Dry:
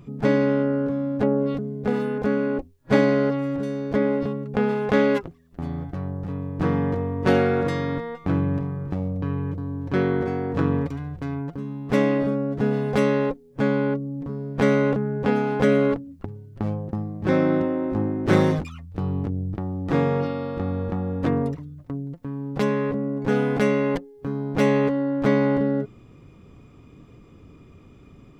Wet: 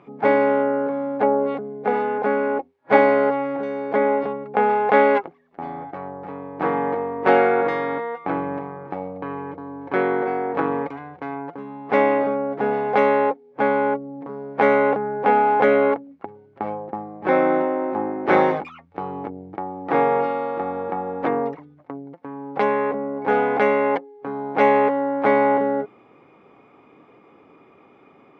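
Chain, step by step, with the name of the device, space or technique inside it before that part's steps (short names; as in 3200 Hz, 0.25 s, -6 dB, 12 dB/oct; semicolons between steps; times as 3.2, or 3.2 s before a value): tin-can telephone (BPF 460–2000 Hz; small resonant body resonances 820/2200 Hz, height 9 dB, ringing for 30 ms); gain +6.5 dB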